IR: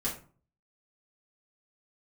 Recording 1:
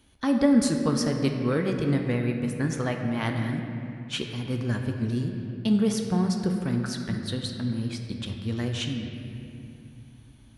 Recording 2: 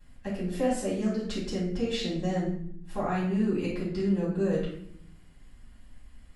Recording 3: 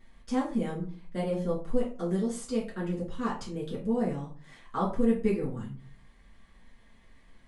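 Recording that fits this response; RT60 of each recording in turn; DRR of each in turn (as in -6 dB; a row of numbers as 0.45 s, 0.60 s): 3; 2.6 s, 0.65 s, 0.40 s; 3.0 dB, -8.5 dB, -7.5 dB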